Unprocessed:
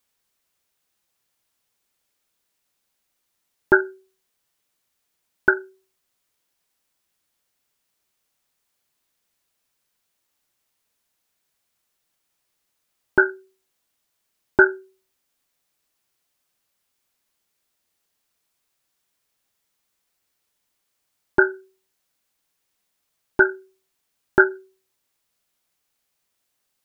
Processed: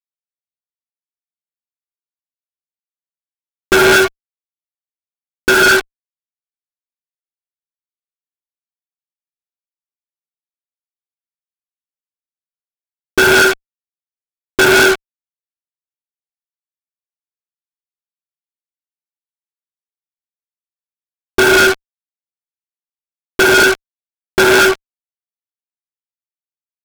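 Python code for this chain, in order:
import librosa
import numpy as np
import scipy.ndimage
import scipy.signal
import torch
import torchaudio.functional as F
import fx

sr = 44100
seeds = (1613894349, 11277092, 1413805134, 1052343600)

y = fx.rev_gated(x, sr, seeds[0], gate_ms=250, shape='rising', drr_db=-5.0)
y = fx.fuzz(y, sr, gain_db=38.0, gate_db=-30.0)
y = F.gain(torch.from_numpy(y), 5.5).numpy()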